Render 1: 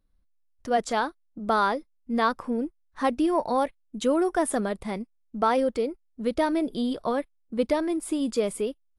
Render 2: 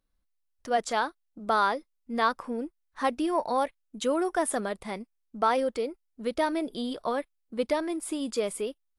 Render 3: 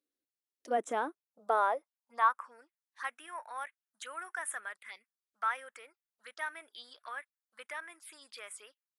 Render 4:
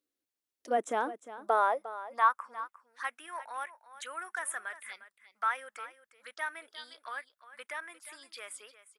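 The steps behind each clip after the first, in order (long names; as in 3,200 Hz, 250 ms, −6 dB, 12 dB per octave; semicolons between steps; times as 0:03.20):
low-shelf EQ 350 Hz −9 dB
phaser swept by the level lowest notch 160 Hz, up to 4,600 Hz, full sweep at −26.5 dBFS; high-pass filter sweep 300 Hz → 1,600 Hz, 0:00.98–0:02.67; level −6.5 dB
single-tap delay 354 ms −14.5 dB; level +2 dB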